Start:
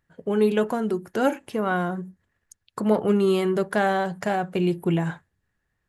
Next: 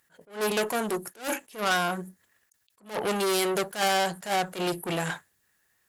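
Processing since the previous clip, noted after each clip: tube stage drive 27 dB, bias 0.4; RIAA curve recording; attack slew limiter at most 200 dB/s; gain +6.5 dB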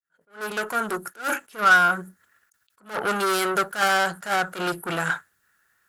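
opening faded in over 1.02 s; bell 1400 Hz +15 dB 0.45 oct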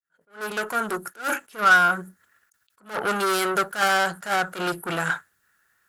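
nothing audible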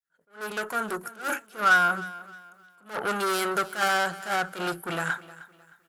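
feedback echo 0.309 s, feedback 33%, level -18 dB; gain -3.5 dB

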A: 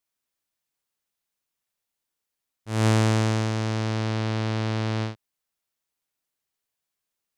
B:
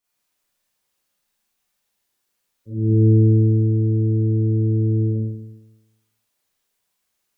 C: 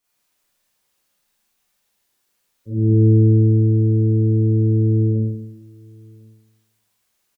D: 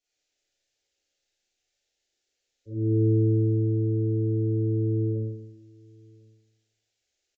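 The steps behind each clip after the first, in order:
spectral gate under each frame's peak -15 dB strong; Schroeder reverb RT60 1 s, combs from 31 ms, DRR -9.5 dB
compressor 1.5:1, threshold -19 dBFS, peak gain reduction 3.5 dB; outdoor echo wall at 180 m, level -27 dB; gain +4.5 dB
fixed phaser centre 440 Hz, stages 4; downsampling 16000 Hz; gain -4.5 dB

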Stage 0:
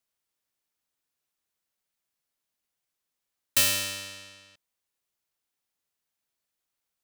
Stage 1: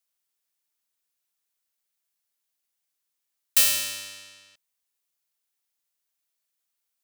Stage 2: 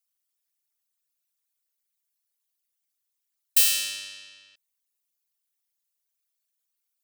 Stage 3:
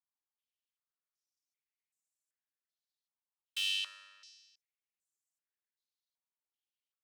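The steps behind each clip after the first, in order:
tilt +2 dB/oct; gain -3 dB
formant sharpening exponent 2
soft clip -15.5 dBFS, distortion -13 dB; stepped band-pass 2.6 Hz 910–7400 Hz

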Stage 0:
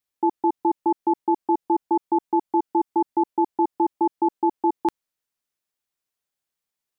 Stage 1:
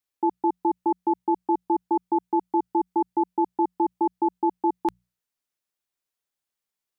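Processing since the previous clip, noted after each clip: notches 60/120/180 Hz; gain -2 dB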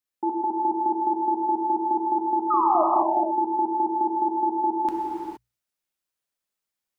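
painted sound fall, 2.5–2.84, 590–1300 Hz -20 dBFS; non-linear reverb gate 0.49 s flat, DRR -2.5 dB; gain -3.5 dB

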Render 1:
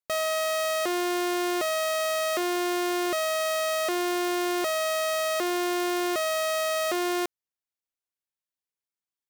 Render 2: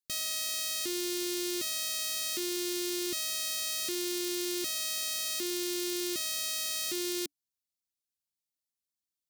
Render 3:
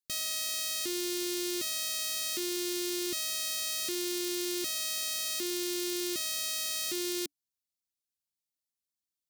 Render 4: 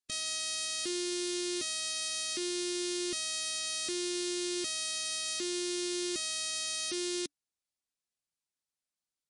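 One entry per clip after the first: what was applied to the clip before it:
EQ curve 290 Hz 0 dB, 710 Hz -28 dB, 4200 Hz +3 dB; gain -1 dB
nothing audible
MP3 40 kbps 24000 Hz

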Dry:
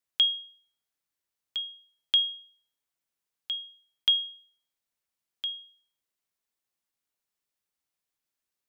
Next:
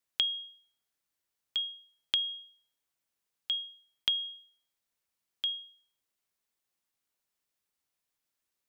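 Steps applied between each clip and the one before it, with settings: compressor, threshold -28 dBFS, peak gain reduction 9 dB; gain +1.5 dB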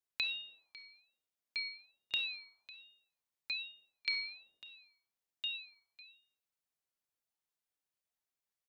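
echo 0.55 s -18 dB; shoebox room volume 2400 m³, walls furnished, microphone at 2.2 m; ring modulator with a swept carrier 730 Hz, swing 40%, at 1.2 Hz; gain -7 dB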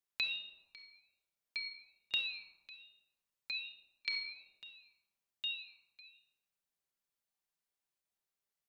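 shoebox room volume 3700 m³, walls furnished, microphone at 1.2 m; gain -1 dB

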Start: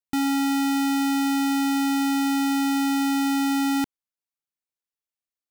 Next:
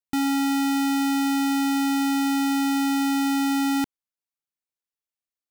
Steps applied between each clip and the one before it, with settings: nothing audible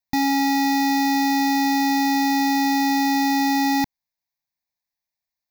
fixed phaser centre 2000 Hz, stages 8; gain +8 dB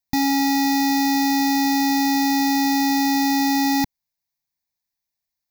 tone controls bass +5 dB, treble +5 dB; gain -1 dB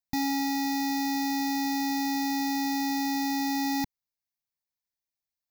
vocal rider; gain -9 dB

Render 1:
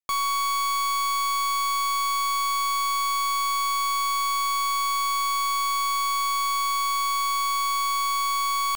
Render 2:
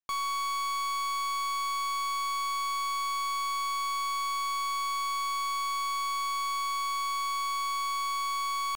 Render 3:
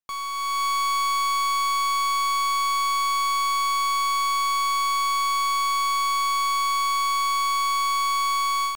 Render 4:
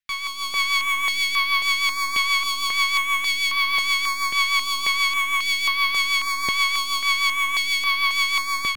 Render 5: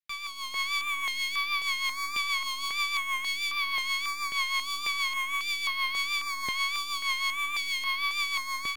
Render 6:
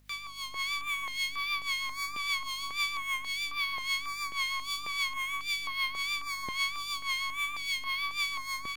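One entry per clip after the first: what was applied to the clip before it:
high shelf 11000 Hz -9.5 dB; gain -6 dB
AGC gain up to 8 dB
graphic EQ 125/250/500/1000/2000/4000/8000 Hz -4/+4/-10/-8/+11/+4/-4 dB; rotary speaker horn 6.3 Hz; stepped notch 3.7 Hz 310–7400 Hz; gain +5.5 dB
vibrato 1.5 Hz 67 cents; gain -8.5 dB
upward compressor, threshold -44 dBFS; harmonic tremolo 3.7 Hz, depth 70%, crossover 1200 Hz; hum 50 Hz, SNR 28 dB

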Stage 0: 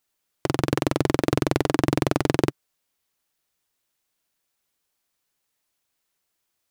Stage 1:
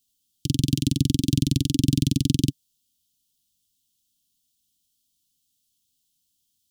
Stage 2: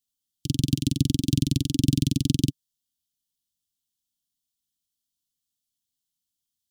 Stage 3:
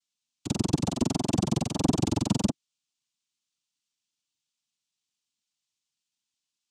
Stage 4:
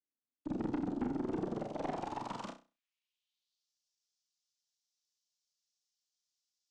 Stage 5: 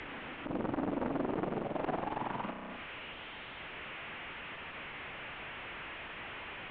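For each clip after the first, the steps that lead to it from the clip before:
Chebyshev band-stop 270–3100 Hz, order 4; gain +5.5 dB
upward expander 1.5:1, over -39 dBFS
noise vocoder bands 4; gain -2.5 dB
band-pass sweep 310 Hz -> 5400 Hz, 1.14–3.73; tube stage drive 32 dB, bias 0.3; flutter echo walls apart 5.5 m, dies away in 0.3 s; gain +1.5 dB
delta modulation 16 kbps, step -42.5 dBFS; air absorption 130 m; core saturation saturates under 830 Hz; gain +7 dB

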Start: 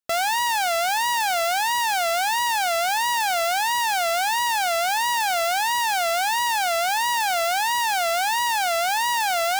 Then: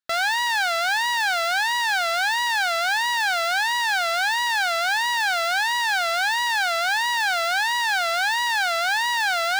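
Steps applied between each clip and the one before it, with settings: fifteen-band EQ 1600 Hz +11 dB, 4000 Hz +8 dB, 16000 Hz -7 dB; gain -4.5 dB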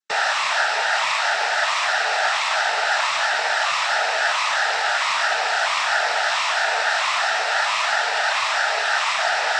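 noise vocoder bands 12; gain +2 dB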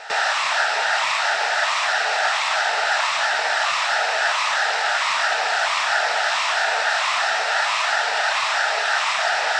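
reverse echo 0.124 s -16 dB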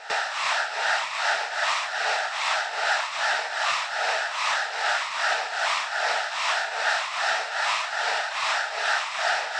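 tremolo triangle 2.5 Hz, depth 70%; gain -2 dB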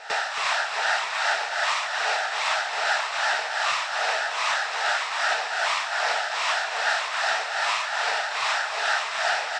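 echo 0.273 s -9 dB

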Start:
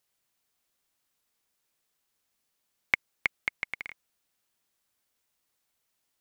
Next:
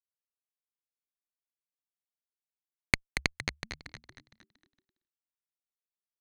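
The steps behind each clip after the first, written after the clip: added harmonics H 3 -19 dB, 4 -12 dB, 7 -21 dB, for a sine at -4.5 dBFS; frequency-shifting echo 0.231 s, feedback 46%, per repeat -79 Hz, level -8.5 dB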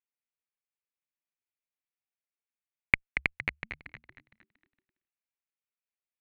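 resonant high shelf 3600 Hz -13.5 dB, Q 3; in parallel at -1 dB: level quantiser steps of 9 dB; on the sum: gain -7.5 dB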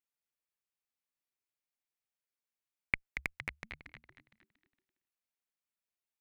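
transient shaper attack -8 dB, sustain 0 dB; gain -1 dB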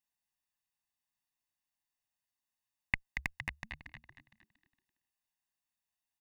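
comb 1.1 ms, depth 93%; gain -1 dB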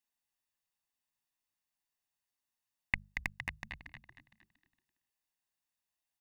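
notches 50/100/150/200 Hz

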